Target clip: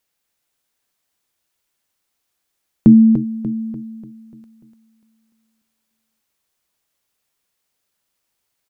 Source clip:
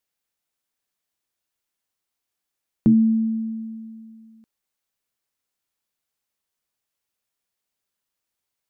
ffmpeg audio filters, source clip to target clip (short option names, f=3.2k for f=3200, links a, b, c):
-af "aecho=1:1:294|588|882|1176|1470|1764:0.447|0.21|0.0987|0.0464|0.0218|0.0102,volume=7.5dB"